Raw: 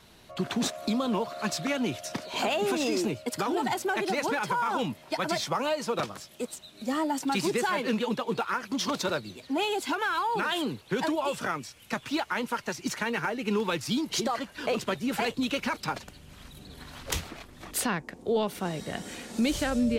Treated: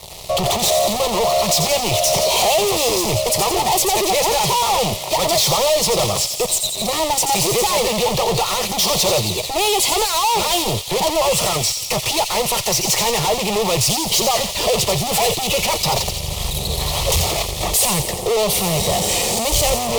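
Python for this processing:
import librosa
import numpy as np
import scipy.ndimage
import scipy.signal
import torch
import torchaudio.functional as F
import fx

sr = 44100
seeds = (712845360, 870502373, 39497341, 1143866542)

y = fx.fuzz(x, sr, gain_db=45.0, gate_db=-53.0)
y = fx.fixed_phaser(y, sr, hz=640.0, stages=4)
y = fx.echo_wet_highpass(y, sr, ms=87, feedback_pct=66, hz=2700.0, wet_db=-6)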